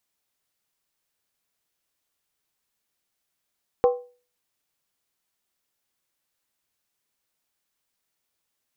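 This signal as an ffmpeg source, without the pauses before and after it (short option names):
-f lavfi -i "aevalsrc='0.251*pow(10,-3*t/0.37)*sin(2*PI*491*t)+0.1*pow(10,-3*t/0.293)*sin(2*PI*782.7*t)+0.0398*pow(10,-3*t/0.253)*sin(2*PI*1048.8*t)+0.0158*pow(10,-3*t/0.244)*sin(2*PI*1127.3*t)+0.00631*pow(10,-3*t/0.227)*sin(2*PI*1302.6*t)':d=0.63:s=44100"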